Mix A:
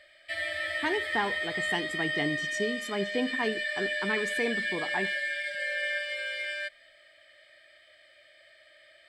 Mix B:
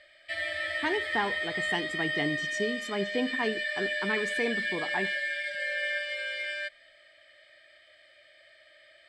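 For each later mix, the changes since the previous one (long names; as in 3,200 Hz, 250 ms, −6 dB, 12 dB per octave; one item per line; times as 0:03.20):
master: add low-pass filter 8,600 Hz 12 dB per octave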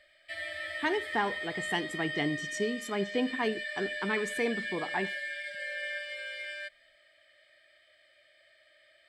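background −5.5 dB
master: remove low-pass filter 8,600 Hz 12 dB per octave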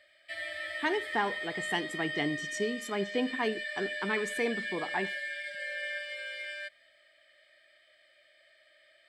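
master: add high-pass filter 140 Hz 6 dB per octave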